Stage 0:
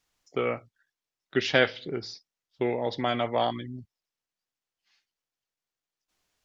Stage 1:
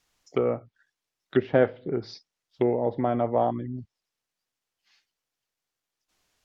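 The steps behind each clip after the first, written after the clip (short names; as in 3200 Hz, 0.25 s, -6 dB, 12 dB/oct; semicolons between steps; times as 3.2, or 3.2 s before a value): treble ducked by the level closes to 800 Hz, closed at -26.5 dBFS; gain +4.5 dB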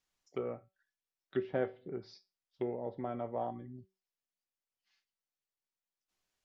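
resonator 190 Hz, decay 0.27 s, harmonics all, mix 60%; gain -7 dB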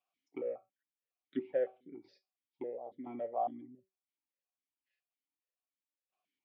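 tremolo saw down 0.98 Hz, depth 65%; vowel sequencer 7.2 Hz; gain +10 dB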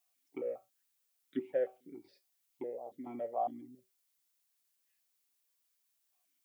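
added noise blue -79 dBFS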